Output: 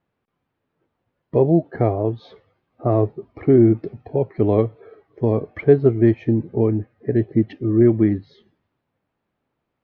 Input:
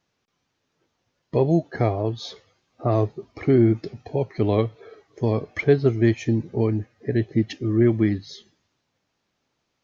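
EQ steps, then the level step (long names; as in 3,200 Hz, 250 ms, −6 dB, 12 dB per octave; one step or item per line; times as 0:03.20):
dynamic equaliser 420 Hz, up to +4 dB, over −30 dBFS, Q 0.74
high-frequency loss of the air 310 metres
high-shelf EQ 2,900 Hz −9.5 dB
+1.5 dB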